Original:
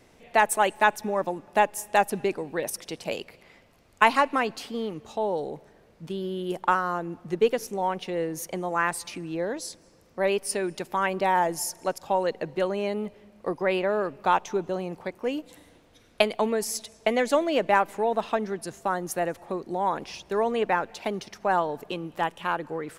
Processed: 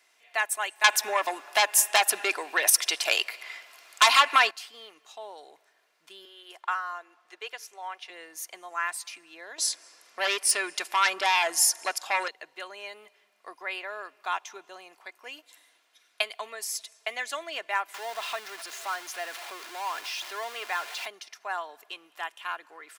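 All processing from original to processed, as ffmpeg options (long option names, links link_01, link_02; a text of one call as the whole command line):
ffmpeg -i in.wav -filter_complex "[0:a]asettb=1/sr,asplit=3[link_01][link_02][link_03];[link_01]atrim=end=0.844[link_04];[link_02]atrim=start=0.84:end=4.51,asetpts=PTS-STARTPTS,afade=type=in:duration=0.004:curve=qsin,afade=type=out:start_time=3.666:duration=0.004:curve=qsin,bass=frequency=250:gain=-9,treble=frequency=4000:gain=-1,acompressor=threshold=-26dB:ratio=1.5:attack=3.2:release=140:knee=1:detection=peak,aeval=exprs='0.473*sin(PI/2*4.47*val(0)/0.473)':channel_layout=same[link_05];[link_03]atrim=start=4.506[link_06];[link_04][link_05]acrossfade=duration=0.004:curve1=hsin:curve2=qsin[link_07];[link_07][link_06]acrossfade=duration=0.004:curve1=qsin:curve2=hsin,asettb=1/sr,asplit=3[link_08][link_09][link_10];[link_08]atrim=end=6.254[link_11];[link_09]atrim=start=6.25:end=8.1,asetpts=PTS-STARTPTS,afade=type=in:duration=0.004:curve=qsin,afade=type=out:start_time=1.846:duration=0.004:curve=qsin,highpass=450,highshelf=frequency=8300:gain=-9.5[link_12];[link_10]atrim=start=8.096[link_13];[link_11][link_12]acrossfade=duration=0.004:curve1=hsin:curve2=qsin[link_14];[link_14][link_13]acrossfade=duration=0.004:curve1=qsin:curve2=hsin,asettb=1/sr,asplit=3[link_15][link_16][link_17];[link_15]atrim=end=9.584[link_18];[link_16]atrim=start=9.58:end=12.28,asetpts=PTS-STARTPTS,afade=type=in:duration=0.004:curve=qsin,afade=type=out:start_time=2.696:duration=0.004:curve=qsin,lowpass=frequency=12000:width=0.5412,lowpass=frequency=12000:width=1.3066,aeval=exprs='0.282*sin(PI/2*2.51*val(0)/0.282)':channel_layout=same[link_19];[link_17]atrim=start=12.276[link_20];[link_18][link_19]acrossfade=duration=0.004:curve1=hsin:curve2=qsin[link_21];[link_21][link_20]acrossfade=duration=0.004:curve1=qsin:curve2=hsin,asettb=1/sr,asplit=3[link_22][link_23][link_24];[link_22]atrim=end=17.944[link_25];[link_23]atrim=start=17.94:end=21.06,asetpts=PTS-STARTPTS,afade=type=in:duration=0.004:curve=qsin,afade=type=out:start_time=3.116:duration=0.004:curve=qsin,aeval=exprs='val(0)+0.5*0.0398*sgn(val(0))':channel_layout=same,bass=frequency=250:gain=-5,treble=frequency=4000:gain=5,acrossover=split=4400[link_26][link_27];[link_27]acompressor=threshold=-43dB:ratio=4:attack=1:release=60[link_28];[link_26][link_28]amix=inputs=2:normalize=0[link_29];[link_24]atrim=start=21.056[link_30];[link_25][link_29]acrossfade=duration=0.004:curve1=hsin:curve2=qsin[link_31];[link_31][link_30]acrossfade=duration=0.004:curve1=qsin:curve2=hsin,highpass=1300,aecho=1:1:2.9:0.4,volume=-2dB" out.wav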